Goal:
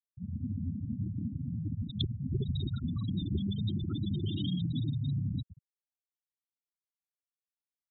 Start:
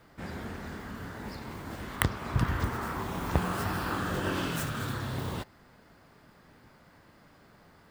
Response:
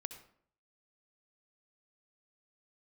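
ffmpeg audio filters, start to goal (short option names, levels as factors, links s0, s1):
-filter_complex "[0:a]afwtdn=0.01,firequalizer=gain_entry='entry(140,0);entry(390,-15);entry(1100,-13);entry(2200,-8);entry(3500,11);entry(5600,-5);entry(12000,-6)':delay=0.05:min_phase=1,dynaudnorm=f=270:g=3:m=2.82,asoftclip=type=tanh:threshold=0.0891,highpass=f=64:w=0.5412,highpass=f=64:w=1.3066,highshelf=f=4800:t=q:w=3:g=-11.5,asplit=2[s0][s1];[1:a]atrim=start_sample=2205,asetrate=36603,aresample=44100[s2];[s1][s2]afir=irnorm=-1:irlink=0,volume=1.26[s3];[s0][s3]amix=inputs=2:normalize=0,asetrate=48091,aresample=44100,atempo=0.917004,acrossover=split=310|1000[s4][s5][s6];[s4]acompressor=threshold=0.0251:ratio=4[s7];[s5]acompressor=threshold=0.0141:ratio=4[s8];[s6]acompressor=threshold=0.0282:ratio=4[s9];[s7][s8][s9]amix=inputs=3:normalize=0,asplit=6[s10][s11][s12][s13][s14][s15];[s11]adelay=308,afreqshift=100,volume=0.178[s16];[s12]adelay=616,afreqshift=200,volume=0.0977[s17];[s13]adelay=924,afreqshift=300,volume=0.0537[s18];[s14]adelay=1232,afreqshift=400,volume=0.0295[s19];[s15]adelay=1540,afreqshift=500,volume=0.0162[s20];[s10][s16][s17][s18][s19][s20]amix=inputs=6:normalize=0,afftfilt=real='re*gte(hypot(re,im),0.112)':imag='im*gte(hypot(re,im),0.112)':win_size=1024:overlap=0.75"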